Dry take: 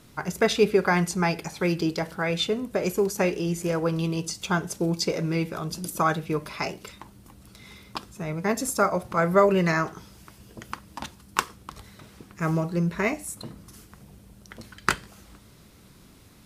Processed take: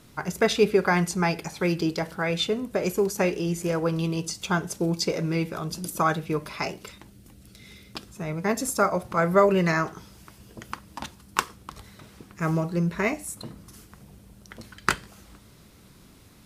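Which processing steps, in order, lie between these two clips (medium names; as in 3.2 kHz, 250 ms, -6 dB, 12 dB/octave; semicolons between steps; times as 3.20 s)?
6.98–8.07 s: peaking EQ 1 kHz -12 dB 0.76 oct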